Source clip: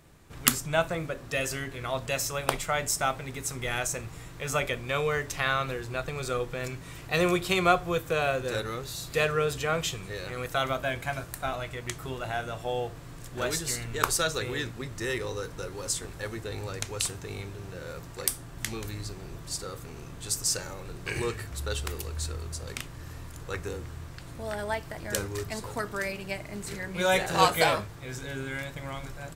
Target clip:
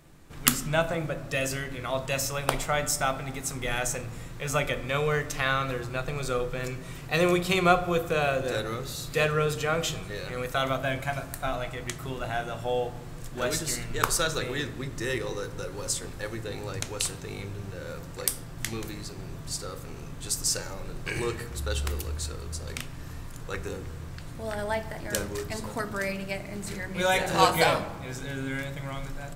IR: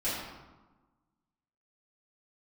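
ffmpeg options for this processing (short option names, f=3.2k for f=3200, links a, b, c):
-filter_complex "[0:a]asplit=2[a][b];[1:a]atrim=start_sample=2205,lowshelf=f=460:g=10[c];[b][c]afir=irnorm=-1:irlink=0,volume=-20dB[d];[a][d]amix=inputs=2:normalize=0"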